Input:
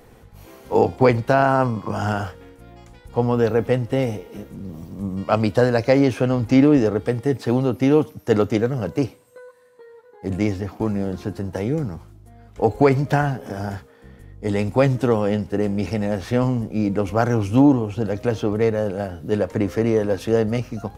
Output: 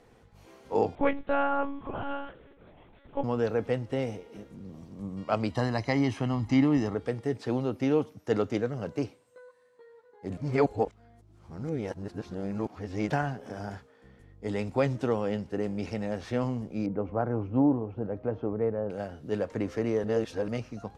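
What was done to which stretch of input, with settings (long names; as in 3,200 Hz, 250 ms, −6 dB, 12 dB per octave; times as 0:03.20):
0:00.95–0:03.24: one-pitch LPC vocoder at 8 kHz 280 Hz
0:05.50–0:06.95: comb filter 1 ms
0:10.37–0:13.10: reverse
0:16.86–0:18.90: low-pass filter 1,100 Hz
0:20.04–0:20.48: reverse
whole clip: low-pass filter 7,800 Hz 12 dB per octave; low-shelf EQ 140 Hz −5 dB; level −8.5 dB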